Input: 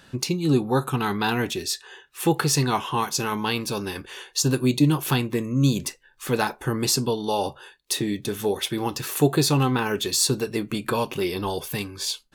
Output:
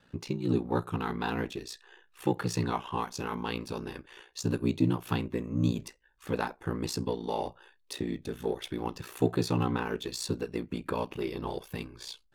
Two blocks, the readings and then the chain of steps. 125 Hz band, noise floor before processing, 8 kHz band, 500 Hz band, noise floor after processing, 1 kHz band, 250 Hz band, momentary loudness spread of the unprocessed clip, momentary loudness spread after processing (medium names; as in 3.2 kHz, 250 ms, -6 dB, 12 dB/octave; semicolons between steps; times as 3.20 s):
-8.0 dB, -56 dBFS, -17.0 dB, -7.5 dB, -66 dBFS, -8.5 dB, -7.5 dB, 9 LU, 12 LU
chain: treble shelf 4.3 kHz -11.5 dB; ring modulator 30 Hz; in parallel at -9 dB: hysteresis with a dead band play -29 dBFS; on the sum: trim -7 dB